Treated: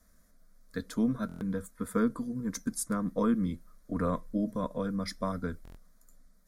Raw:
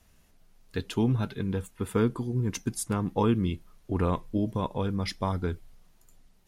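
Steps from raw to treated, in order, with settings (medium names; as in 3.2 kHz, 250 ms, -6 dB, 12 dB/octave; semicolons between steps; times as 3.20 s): static phaser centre 560 Hz, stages 8; buffer glitch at 1.27/5.63 s, samples 1024, times 5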